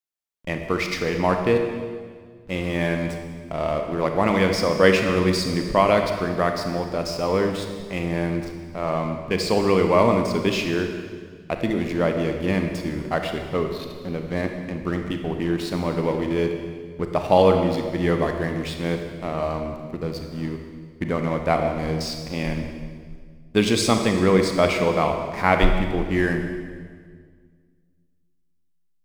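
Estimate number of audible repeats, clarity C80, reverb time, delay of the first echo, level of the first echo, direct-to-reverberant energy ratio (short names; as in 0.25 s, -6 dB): none, 6.5 dB, 1.8 s, none, none, 4.5 dB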